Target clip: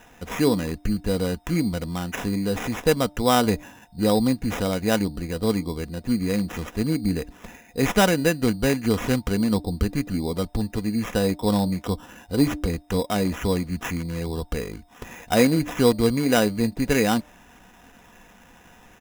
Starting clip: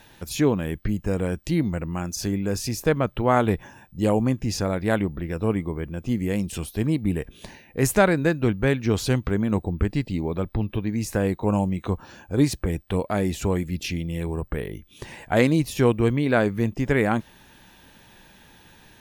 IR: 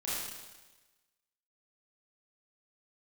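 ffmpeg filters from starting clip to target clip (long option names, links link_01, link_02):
-af "aecho=1:1:4.1:0.4,acrusher=samples=10:mix=1:aa=0.000001,bandreject=frequency=298.5:width_type=h:width=4,bandreject=frequency=597:width_type=h:width=4,bandreject=frequency=895.5:width_type=h:width=4"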